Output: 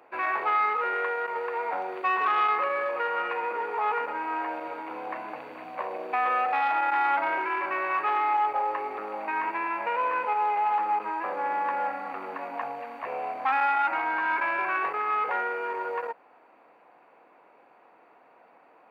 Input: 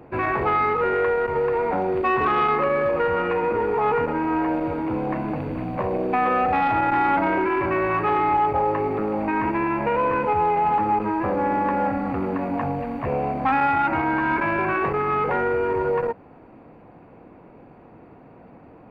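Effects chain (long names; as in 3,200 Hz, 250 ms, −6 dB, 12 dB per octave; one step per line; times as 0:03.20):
high-pass filter 790 Hz 12 dB per octave
level −2 dB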